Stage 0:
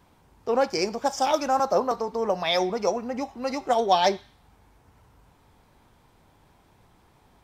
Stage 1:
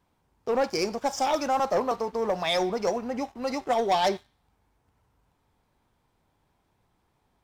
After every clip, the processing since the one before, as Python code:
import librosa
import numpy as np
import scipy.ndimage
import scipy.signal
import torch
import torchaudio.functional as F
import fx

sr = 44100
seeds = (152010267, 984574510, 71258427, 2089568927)

y = fx.leveller(x, sr, passes=2)
y = y * librosa.db_to_amplitude(-8.0)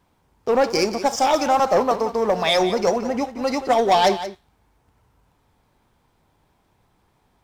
y = x + 10.0 ** (-12.5 / 20.0) * np.pad(x, (int(178 * sr / 1000.0), 0))[:len(x)]
y = y * librosa.db_to_amplitude(7.0)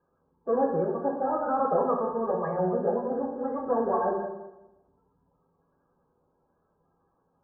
y = fx.spec_quant(x, sr, step_db=30)
y = scipy.signal.sosfilt(scipy.signal.cheby1(6, 6, 1700.0, 'lowpass', fs=sr, output='sos'), y)
y = fx.rev_fdn(y, sr, rt60_s=0.99, lf_ratio=1.0, hf_ratio=0.45, size_ms=36.0, drr_db=0.0)
y = y * librosa.db_to_amplitude(-7.5)